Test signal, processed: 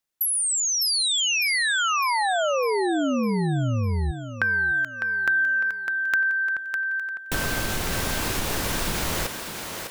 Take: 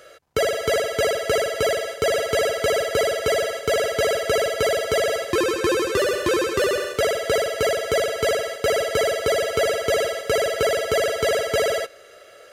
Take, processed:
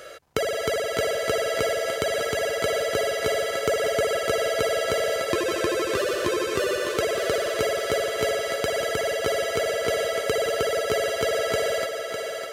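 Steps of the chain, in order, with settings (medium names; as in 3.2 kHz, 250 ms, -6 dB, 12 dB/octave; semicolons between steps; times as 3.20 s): compression 6:1, threshold -28 dBFS; on a send: thinning echo 604 ms, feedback 50%, high-pass 220 Hz, level -6 dB; on the sum: trim +5 dB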